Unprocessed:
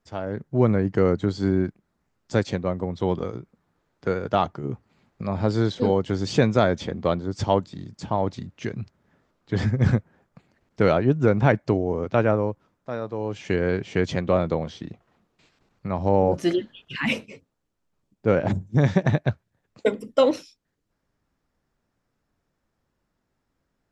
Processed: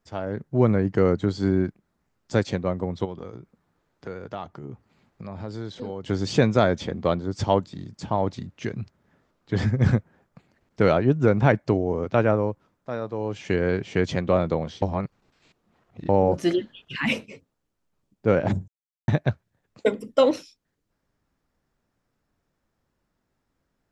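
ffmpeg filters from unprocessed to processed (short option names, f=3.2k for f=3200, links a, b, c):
-filter_complex "[0:a]asplit=3[a][b][c];[a]afade=t=out:st=3.04:d=0.02[d];[b]acompressor=threshold=-39dB:ratio=2:attack=3.2:release=140:knee=1:detection=peak,afade=t=in:st=3.04:d=0.02,afade=t=out:st=6.03:d=0.02[e];[c]afade=t=in:st=6.03:d=0.02[f];[d][e][f]amix=inputs=3:normalize=0,asplit=5[g][h][i][j][k];[g]atrim=end=14.822[l];[h]atrim=start=14.818:end=16.092,asetpts=PTS-STARTPTS,areverse[m];[i]atrim=start=16.088:end=18.68,asetpts=PTS-STARTPTS,afade=t=out:st=2.588:d=0.004:c=hsin[n];[j]atrim=start=18.68:end=19.08,asetpts=PTS-STARTPTS,volume=0[o];[k]atrim=start=19.08,asetpts=PTS-STARTPTS,afade=t=in:d=0.004:c=hsin[p];[l][m]acrossfade=d=0.004:c1=hsin:c2=hsin[q];[n][o][p]concat=n=3:v=0:a=1[r];[q][r]acrossfade=d=0.004:c1=hsin:c2=hsin"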